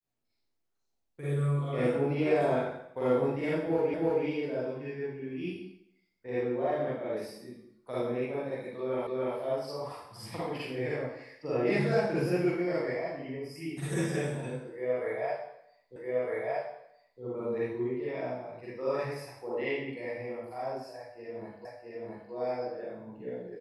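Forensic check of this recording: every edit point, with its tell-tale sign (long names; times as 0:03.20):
0:03.94: the same again, the last 0.32 s
0:09.07: the same again, the last 0.29 s
0:15.96: the same again, the last 1.26 s
0:21.65: the same again, the last 0.67 s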